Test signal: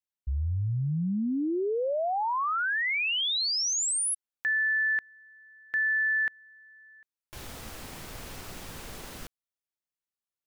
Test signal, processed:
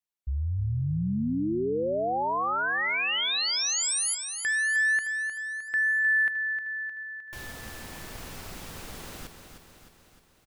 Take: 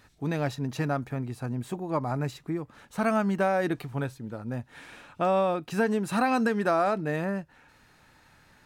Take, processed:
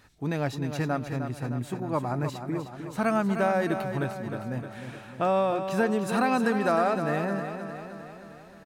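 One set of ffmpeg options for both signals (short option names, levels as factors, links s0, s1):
-af "aecho=1:1:308|616|924|1232|1540|1848|2156:0.376|0.218|0.126|0.0733|0.0425|0.0247|0.0143"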